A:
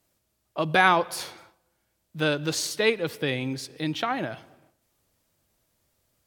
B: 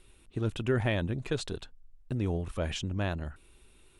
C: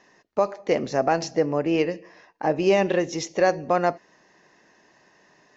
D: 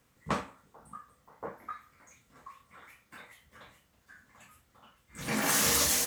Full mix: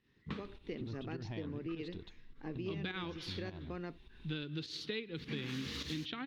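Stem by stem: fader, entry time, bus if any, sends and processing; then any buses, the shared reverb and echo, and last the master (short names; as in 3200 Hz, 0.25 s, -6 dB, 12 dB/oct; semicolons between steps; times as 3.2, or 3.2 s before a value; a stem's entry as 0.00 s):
-2.5 dB, 2.10 s, no send, dry
-12.0 dB, 0.45 s, no send, band shelf 790 Hz +14.5 dB 1 oct; upward compressor, threshold -26 dBFS; bit-crush 9-bit
-11.5 dB, 0.00 s, no send, dry
-3.0 dB, 0.00 s, no send, dry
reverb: off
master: pump 103 bpm, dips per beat 1, -10 dB, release 0.148 s; EQ curve 260 Hz 0 dB, 420 Hz -4 dB, 620 Hz -21 dB, 1500 Hz -9 dB, 3800 Hz 0 dB, 8300 Hz -28 dB; compressor 6:1, threshold -37 dBFS, peak gain reduction 13 dB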